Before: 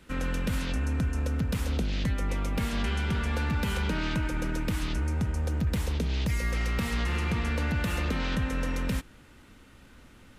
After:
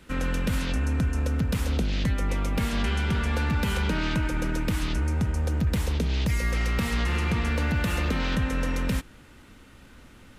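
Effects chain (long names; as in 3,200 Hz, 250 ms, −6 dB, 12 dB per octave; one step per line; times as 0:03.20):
0:07.42–0:08.38: floating-point word with a short mantissa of 6 bits
level +3 dB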